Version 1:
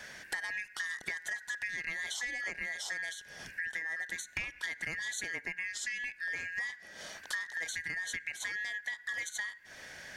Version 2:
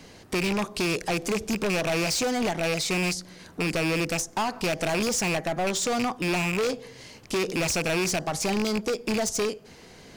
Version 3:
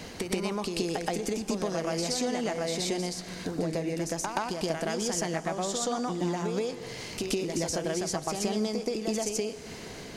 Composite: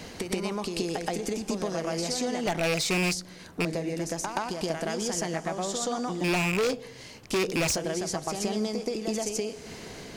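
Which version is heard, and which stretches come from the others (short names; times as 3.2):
3
2.47–3.65 from 2
6.24–7.76 from 2
not used: 1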